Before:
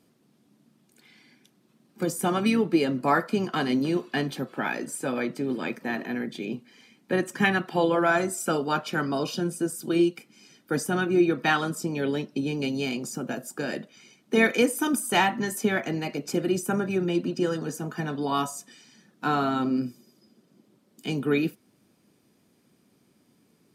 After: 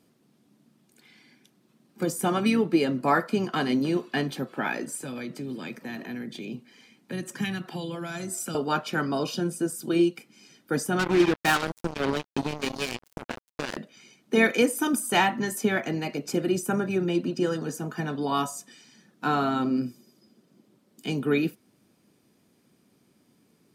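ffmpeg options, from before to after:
-filter_complex "[0:a]asettb=1/sr,asplit=3[a][b][c];[a]atrim=end=4.944[d];[b]atrim=start=4.94:end=8.55,asetpts=PTS-STARTPTS,afade=t=in:d=0.004:c=qsin,afade=t=out:st=3.606:d=0.004:c=qsin,acrossover=split=210|3000[e][f][g];[f]acompressor=threshold=-37dB:ratio=6:attack=3.2:release=140:knee=2.83:detection=peak[h];[e][h][g]amix=inputs=3:normalize=0[i];[c]atrim=start=8.546[j];[d][i]acrossfade=d=0.004:c1=hsin:c2=qsin[k];[k][j]acrossfade=d=0.004:c1=qsin:c2=hsin,asettb=1/sr,asplit=3[l][m][n];[l]atrim=end=10.994[o];[m]atrim=start=10.99:end=13.77,asetpts=PTS-STARTPTS,afade=t=in:d=0.004:c=qsin,afade=t=out:st=2.776:d=0.004:c=qsin,acrusher=bits=3:mix=0:aa=0.5[p];[n]atrim=start=13.766[q];[o][p]acrossfade=d=0.004:c1=hsin:c2=qsin[r];[r][q]acrossfade=d=0.004:c1=qsin:c2=hsin"

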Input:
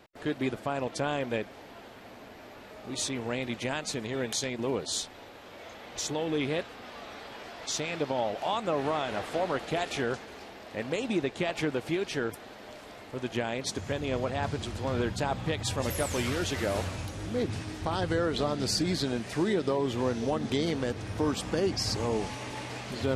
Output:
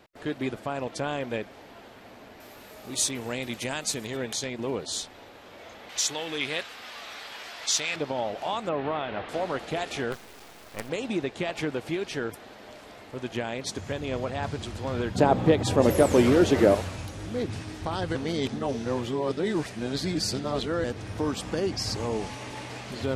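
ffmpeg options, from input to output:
-filter_complex "[0:a]asettb=1/sr,asplit=3[a][b][c];[a]atrim=end=2.404[d];[b]atrim=start=2.4:end=4.17,asetpts=PTS-STARTPTS,afade=t=in:d=0.004:c=qsin,afade=t=out:st=1.766:d=0.004:c=qsin,aemphasis=mode=production:type=50fm[e];[c]atrim=start=4.166[f];[d][e]acrossfade=d=0.004:c1=hsin:c2=qsin[g];[g][f]acrossfade=d=0.004:c1=qsin:c2=hsin,asettb=1/sr,asplit=3[h][i][j];[h]atrim=end=5.894[k];[i]atrim=start=5.89:end=7.96,asetpts=PTS-STARTPTS,afade=t=in:d=0.004:c=qsin,afade=t=out:st=2.066:d=0.004:c=qsin,tiltshelf=f=860:g=-8.5[l];[j]atrim=start=7.956[m];[k][l]acrossfade=d=0.004:c1=hsin:c2=qsin[n];[n][m]acrossfade=d=0.004:c1=qsin:c2=hsin,asettb=1/sr,asplit=3[o][p][q];[o]atrim=end=8.694[r];[p]atrim=start=8.69:end=9.29,asetpts=PTS-STARTPTS,afade=t=in:d=0.004:c=qsin,afade=t=out:st=0.596:d=0.004:c=qsin,lowpass=f=3.6k:w=0.5412,lowpass=f=3.6k:w=1.3066[s];[q]atrim=start=9.286[t];[r][s]acrossfade=d=0.004:c1=hsin:c2=qsin[u];[u][t]acrossfade=d=0.004:c1=qsin:c2=hsin,asplit=3[v][w][x];[v]afade=t=out:st=10.11:d=0.02[y];[w]acrusher=bits=5:dc=4:mix=0:aa=0.000001,afade=t=in:st=10.11:d=0.02,afade=t=out:st=10.88:d=0.02[z];[x]afade=t=in:st=10.88:d=0.02[aa];[y][z][aa]amix=inputs=3:normalize=0,asettb=1/sr,asplit=3[ab][ac][ad];[ab]atrim=end=15.154[ae];[ac]atrim=start=15.15:end=16.75,asetpts=PTS-STARTPTS,afade=t=in:d=0.004:c=qsin,afade=t=out:st=1.596:d=0.004:c=qsin,equalizer=f=360:t=o:w=2.9:g=14[af];[ad]atrim=start=16.746[ag];[ae][af]acrossfade=d=0.004:c1=hsin:c2=qsin[ah];[ah][ag]acrossfade=d=0.004:c1=qsin:c2=hsin,asplit=3[ai][aj][ak];[ai]atrim=end=18.152[al];[aj]atrim=start=18.148:end=20.842,asetpts=PTS-STARTPTS,areverse[am];[ak]atrim=start=20.838[an];[al][am]acrossfade=d=0.004:c1=hsin:c2=hsin[ao];[ao][an]acrossfade=d=0.004:c1=hsin:c2=hsin"

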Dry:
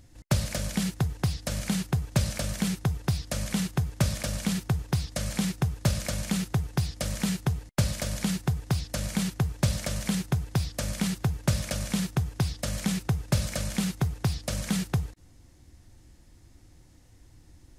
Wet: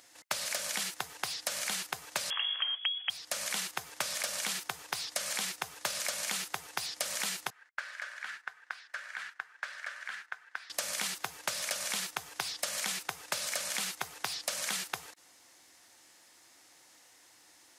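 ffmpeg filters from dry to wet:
-filter_complex "[0:a]asettb=1/sr,asplit=3[a][b][c];[a]atrim=end=2.304[d];[b]atrim=start=2.3:end=3.1,asetpts=PTS-STARTPTS,afade=t=in:d=0.004:c=qsin,afade=t=out:st=0.796:d=0.004:c=qsin,lowpass=f=2.9k:t=q:w=0.5098,lowpass=f=2.9k:t=q:w=0.6013,lowpass=f=2.9k:t=q:w=0.9,lowpass=f=2.9k:t=q:w=2.563,afreqshift=-3400[e];[c]atrim=start=3.096[f];[d][e]acrossfade=d=0.004:c1=hsin:c2=qsin[g];[g][f]acrossfade=d=0.004:c1=qsin:c2=hsin,asettb=1/sr,asplit=3[h][i][j];[h]atrim=end=7.504[k];[i]atrim=start=7.5:end=10.7,asetpts=PTS-STARTPTS,afade=t=in:d=0.004:c=qsin,afade=t=out:st=3.196:d=0.004:c=qsin,bandpass=f=1.6k:t=q:w=4.6[l];[j]atrim=start=10.696[m];[k][l]acrossfade=d=0.004:c1=hsin:c2=qsin[n];[n][m]acrossfade=d=0.004:c1=qsin:c2=hsin,highpass=830,acompressor=threshold=-38dB:ratio=6,volume=7dB"

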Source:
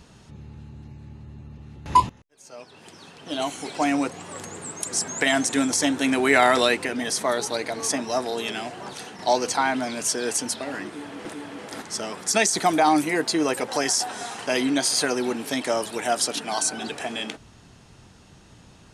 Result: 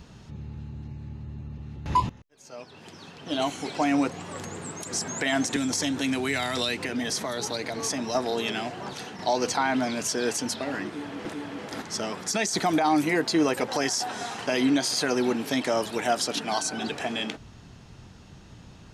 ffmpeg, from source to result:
-filter_complex "[0:a]asettb=1/sr,asplit=3[a][b][c];[a]atrim=end=5.564[d];[b]atrim=start=5.56:end=8.15,asetpts=PTS-STARTPTS,afade=t=in:d=0.004:c=qsin,afade=t=out:st=2.586:d=0.004:c=qsin,acrossover=split=170|3000[e][f][g];[f]acompressor=threshold=-28dB:ratio=6:attack=3.2:release=140:knee=2.83:detection=peak[h];[e][h][g]amix=inputs=3:normalize=0[i];[c]atrim=start=8.146[j];[d][i]acrossfade=d=0.004:c1=hsin:c2=qsin[k];[k][j]acrossfade=d=0.004:c1=qsin:c2=hsin,bass=f=250:g=4,treble=f=4k:g=1,alimiter=limit=-13.5dB:level=0:latency=1:release=79,equalizer=f=9.3k:t=o:w=0.64:g=-9.5"

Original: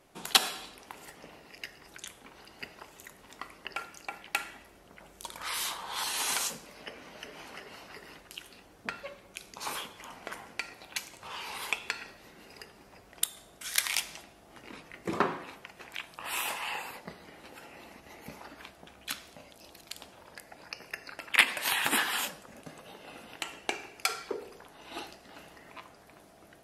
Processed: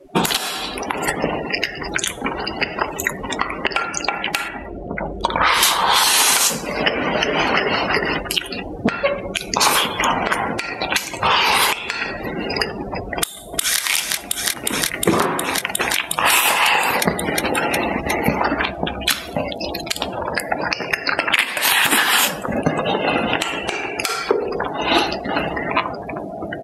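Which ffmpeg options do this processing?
-filter_complex "[0:a]asettb=1/sr,asplit=3[a][b][c];[a]atrim=end=4.484[d];[b]atrim=start=4.48:end=5.63,asetpts=PTS-STARTPTS,afade=t=in:d=0.004:c=qsin,afade=t=out:st=1.146:d=0.004:c=qsin,lowpass=f=1.8k:p=1[e];[c]atrim=start=5.626[f];[d][e]acrossfade=d=0.004:c1=hsin:c2=qsin[g];[g][f]acrossfade=d=0.004:c1=qsin:c2=hsin,asplit=2[h][i];[i]afade=t=in:st=13.16:d=0.01,afade=t=out:st=13.81:d=0.01,aecho=0:1:360|720|1080|1440|1800|2160|2520|2880|3240|3600|3960|4320:0.501187|0.40095|0.32076|0.256608|0.205286|0.164229|0.131383|0.105107|0.0840853|0.0672682|0.0538146|0.0430517[j];[h][j]amix=inputs=2:normalize=0,afftdn=nr=31:nf=-52,acompressor=threshold=-44dB:ratio=8,alimiter=level_in=32.5dB:limit=-1dB:release=50:level=0:latency=1,volume=-1dB"

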